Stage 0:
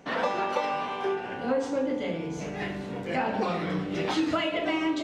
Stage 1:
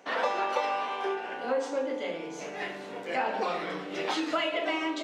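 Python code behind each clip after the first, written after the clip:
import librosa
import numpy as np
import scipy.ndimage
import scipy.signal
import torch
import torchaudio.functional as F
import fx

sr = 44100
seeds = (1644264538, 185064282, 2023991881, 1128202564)

y = scipy.signal.sosfilt(scipy.signal.butter(2, 410.0, 'highpass', fs=sr, output='sos'), x)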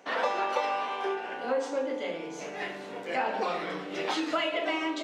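y = x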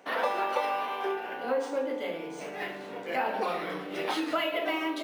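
y = np.interp(np.arange(len(x)), np.arange(len(x))[::3], x[::3])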